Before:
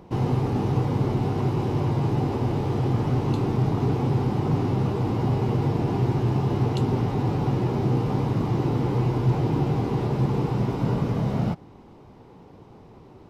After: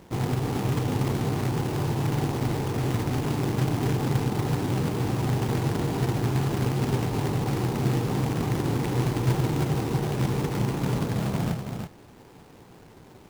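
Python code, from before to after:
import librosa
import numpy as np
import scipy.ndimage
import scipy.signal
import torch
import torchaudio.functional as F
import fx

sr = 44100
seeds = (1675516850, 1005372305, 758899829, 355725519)

y = scipy.signal.medfilt(x, 15)
y = fx.quant_companded(y, sr, bits=4)
y = y + 10.0 ** (-6.0 / 20.0) * np.pad(y, (int(327 * sr / 1000.0), 0))[:len(y)]
y = F.gain(torch.from_numpy(y), -3.5).numpy()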